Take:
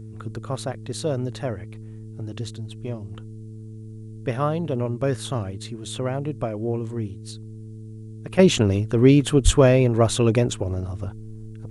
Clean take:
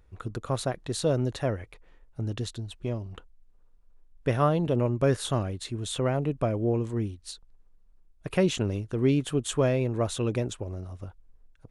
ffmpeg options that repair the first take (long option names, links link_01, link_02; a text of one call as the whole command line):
ffmpeg -i in.wav -filter_complex "[0:a]bandreject=frequency=109.4:width_type=h:width=4,bandreject=frequency=218.8:width_type=h:width=4,bandreject=frequency=328.2:width_type=h:width=4,bandreject=frequency=437.6:width_type=h:width=4,asplit=3[link_01][link_02][link_03];[link_01]afade=type=out:start_time=9.44:duration=0.02[link_04];[link_02]highpass=frequency=140:width=0.5412,highpass=frequency=140:width=1.3066,afade=type=in:start_time=9.44:duration=0.02,afade=type=out:start_time=9.56:duration=0.02[link_05];[link_03]afade=type=in:start_time=9.56:duration=0.02[link_06];[link_04][link_05][link_06]amix=inputs=3:normalize=0,agate=range=-21dB:threshold=-30dB,asetnsamples=nb_out_samples=441:pad=0,asendcmd='8.39 volume volume -9dB',volume=0dB" out.wav